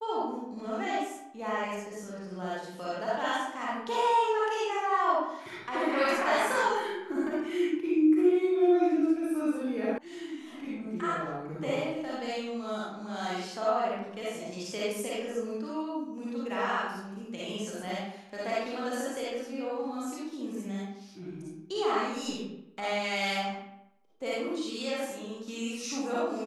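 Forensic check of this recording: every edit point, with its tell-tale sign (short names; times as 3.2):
9.98 sound cut off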